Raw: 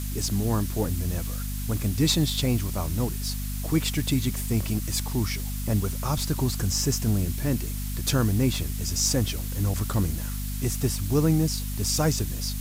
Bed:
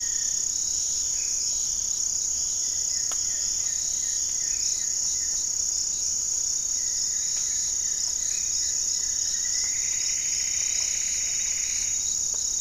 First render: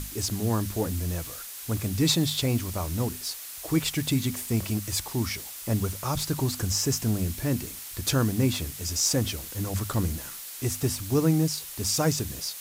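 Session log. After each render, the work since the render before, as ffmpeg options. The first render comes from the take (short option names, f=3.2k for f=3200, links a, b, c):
-af "bandreject=f=50:t=h:w=6,bandreject=f=100:t=h:w=6,bandreject=f=150:t=h:w=6,bandreject=f=200:t=h:w=6,bandreject=f=250:t=h:w=6"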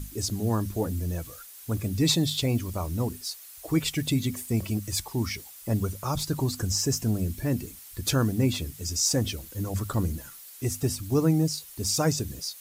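-af "afftdn=nr=10:nf=-40"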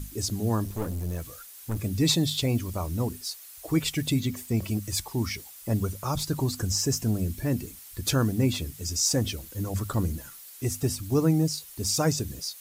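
-filter_complex "[0:a]asettb=1/sr,asplit=3[a][b][c];[a]atrim=end=0.644[d];[b]atrim=start=0.64:end=1.76,asetpts=PTS-STARTPTS,afade=t=in:d=0.004:c=qsin,afade=t=out:st=1.116:d=0.004:c=qsin,aeval=exprs='clip(val(0),-1,0.0211)':c=same[e];[c]atrim=start=1.756[f];[d][e]acrossfade=d=0.004:c1=hsin:c2=qsin[g];[g][f]acrossfade=d=0.004:c1=qsin:c2=hsin,asettb=1/sr,asplit=3[h][i][j];[h]atrim=end=4.204[k];[i]atrim=start=4.2:end=4.62,asetpts=PTS-STARTPTS,afade=t=in:d=0.004:c=qsin,afade=t=out:st=0.416:d=0.004:c=qsin,equalizer=f=10k:w=1.5:g=-6.5[l];[j]atrim=start=4.616[m];[k][l]acrossfade=d=0.004:c1=hsin:c2=qsin[n];[n][m]acrossfade=d=0.004:c1=qsin:c2=hsin"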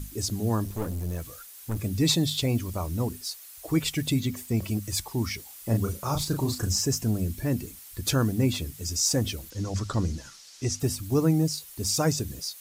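-filter_complex "[0:a]asettb=1/sr,asplit=3[a][b][c];[a]atrim=end=5.464[d];[b]atrim=start=5.46:end=6.79,asetpts=PTS-STARTPTS,afade=t=in:d=0.004:c=qsin,afade=t=out:st=1.326:d=0.004:c=qsin,asplit=2[e][f];[f]adelay=35,volume=-5.5dB[g];[e][g]amix=inputs=2:normalize=0,atrim=end_sample=58653[h];[c]atrim=start=6.786[i];[d][h]acrossfade=d=0.004:c1=hsin:c2=qsin[j];[j][i]acrossfade=d=0.004:c1=qsin:c2=hsin,asettb=1/sr,asplit=3[k][l][m];[k]atrim=end=9.504[n];[l]atrim=start=9.5:end=10.8,asetpts=PTS-STARTPTS,afade=t=in:d=0.004:c=qsin,afade=t=out:st=1.296:d=0.004:c=qsin,lowpass=f=5.6k:t=q:w=2.4[o];[m]atrim=start=10.796[p];[n][o]acrossfade=d=0.004:c1=hsin:c2=qsin[q];[q][p]acrossfade=d=0.004:c1=qsin:c2=hsin"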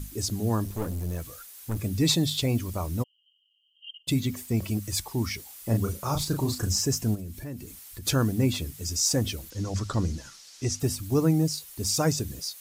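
-filter_complex "[0:a]asplit=3[a][b][c];[a]afade=t=out:st=3.02:d=0.02[d];[b]asuperpass=centerf=3000:order=20:qfactor=7.2,afade=t=in:st=3.02:d=0.02,afade=t=out:st=4.07:d=0.02[e];[c]afade=t=in:st=4.07:d=0.02[f];[d][e][f]amix=inputs=3:normalize=0,asplit=3[g][h][i];[g]afade=t=out:st=7.14:d=0.02[j];[h]acompressor=threshold=-38dB:ratio=2.5:attack=3.2:release=140:knee=1:detection=peak,afade=t=in:st=7.14:d=0.02,afade=t=out:st=8.05:d=0.02[k];[i]afade=t=in:st=8.05:d=0.02[l];[j][k][l]amix=inputs=3:normalize=0"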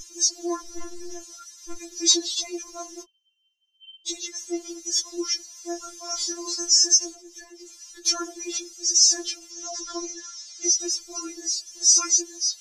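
-af "lowpass=f=6k:t=q:w=8.1,afftfilt=real='re*4*eq(mod(b,16),0)':imag='im*4*eq(mod(b,16),0)':win_size=2048:overlap=0.75"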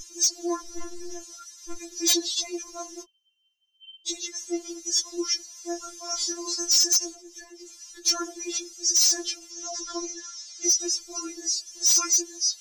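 -af "aeval=exprs='0.2*(abs(mod(val(0)/0.2+3,4)-2)-1)':c=same,aeval=exprs='0.211*(cos(1*acos(clip(val(0)/0.211,-1,1)))-cos(1*PI/2))+0.0015*(cos(7*acos(clip(val(0)/0.211,-1,1)))-cos(7*PI/2))':c=same"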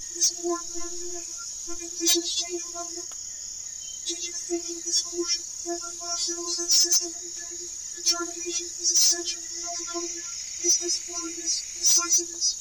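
-filter_complex "[1:a]volume=-10dB[a];[0:a][a]amix=inputs=2:normalize=0"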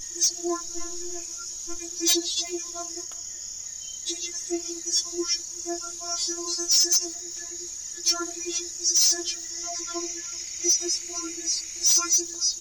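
-filter_complex "[0:a]asplit=2[a][b];[b]adelay=379,volume=-23dB,highshelf=f=4k:g=-8.53[c];[a][c]amix=inputs=2:normalize=0"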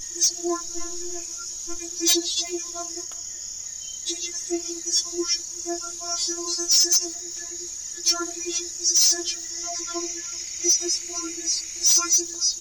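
-af "volume=2dB"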